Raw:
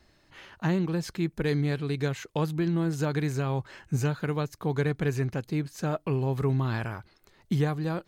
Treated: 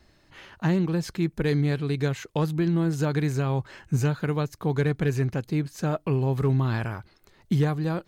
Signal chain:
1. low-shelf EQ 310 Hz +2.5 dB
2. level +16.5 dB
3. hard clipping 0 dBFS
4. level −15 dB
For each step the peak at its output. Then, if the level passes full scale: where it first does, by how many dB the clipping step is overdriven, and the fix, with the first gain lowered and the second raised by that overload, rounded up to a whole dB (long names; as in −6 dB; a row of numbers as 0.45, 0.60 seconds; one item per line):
−13.0, +3.5, 0.0, −15.0 dBFS
step 2, 3.5 dB
step 2 +12.5 dB, step 4 −11 dB